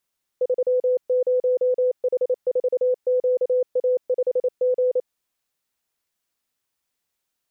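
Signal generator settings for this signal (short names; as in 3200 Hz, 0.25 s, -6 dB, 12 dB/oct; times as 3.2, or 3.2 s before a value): Morse "30H4QA5G" 28 wpm 503 Hz -16.5 dBFS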